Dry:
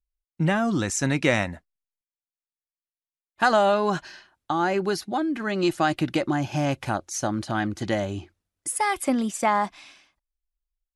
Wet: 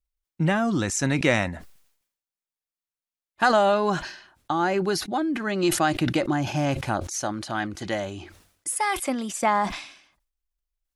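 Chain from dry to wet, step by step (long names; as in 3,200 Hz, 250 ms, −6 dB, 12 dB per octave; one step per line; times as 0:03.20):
0:07.11–0:09.31: low-shelf EQ 370 Hz −7.5 dB
level that may fall only so fast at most 88 dB per second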